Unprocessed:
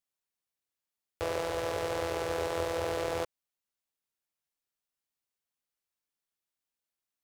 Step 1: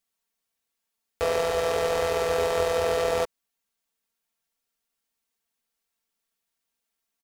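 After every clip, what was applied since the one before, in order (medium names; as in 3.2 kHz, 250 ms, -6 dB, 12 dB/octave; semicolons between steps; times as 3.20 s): comb 4.4 ms, depth 77%; trim +5.5 dB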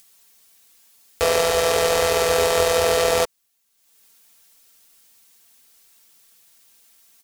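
treble shelf 3 kHz +9.5 dB; upward compressor, threshold -47 dBFS; trim +5 dB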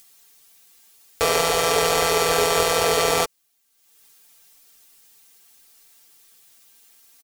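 comb 6.9 ms, depth 59%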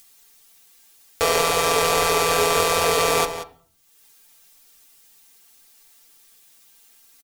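echo from a far wall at 31 m, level -11 dB; on a send at -10 dB: reverberation RT60 0.50 s, pre-delay 3 ms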